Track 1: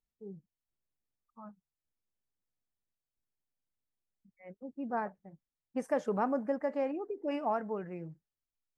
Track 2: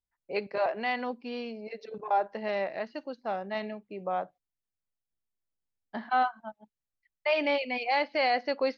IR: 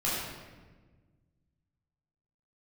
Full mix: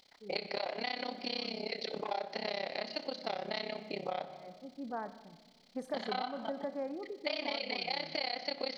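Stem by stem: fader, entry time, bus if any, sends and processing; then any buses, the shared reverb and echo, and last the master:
-4.5 dB, 0.00 s, send -21.5 dB, none
0.0 dB, 0.00 s, send -22 dB, spectral levelling over time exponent 0.6; resonant high shelf 2.2 kHz +12 dB, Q 1.5; AM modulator 33 Hz, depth 100%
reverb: on, RT60 1.4 s, pre-delay 11 ms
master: peaking EQ 2.7 kHz -11 dB 0.42 oct; compression 6:1, threshold -33 dBFS, peak gain reduction 12.5 dB

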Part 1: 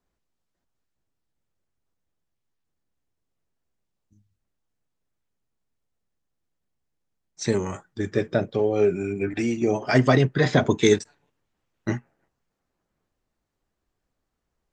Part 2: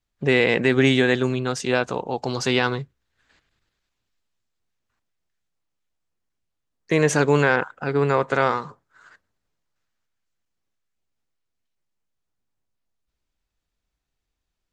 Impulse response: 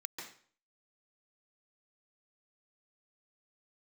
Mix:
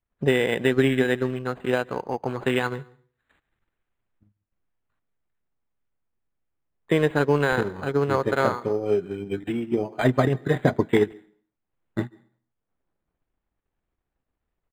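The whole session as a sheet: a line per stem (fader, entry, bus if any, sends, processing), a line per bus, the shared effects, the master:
-4.5 dB, 0.10 s, send -13.5 dB, none
-3.0 dB, 0.00 s, send -14 dB, Chebyshev low-pass 4.9 kHz, order 4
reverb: on, RT60 0.50 s, pre-delay 135 ms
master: treble shelf 6.2 kHz -5.5 dB; transient shaper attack +5 dB, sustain -6 dB; decimation joined by straight lines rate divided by 8×

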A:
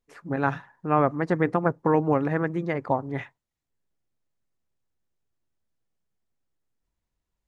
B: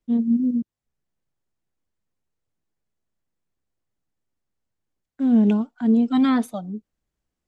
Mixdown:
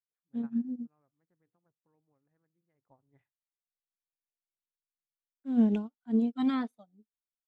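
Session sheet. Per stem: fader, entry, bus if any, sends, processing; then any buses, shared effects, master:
2.66 s -24 dB -> 3.04 s -12.5 dB, 0.00 s, no send, bass shelf 130 Hz +10.5 dB
-4.5 dB, 0.25 s, no send, bass shelf 140 Hz -4.5 dB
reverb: none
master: upward expansion 2.5:1, over -40 dBFS

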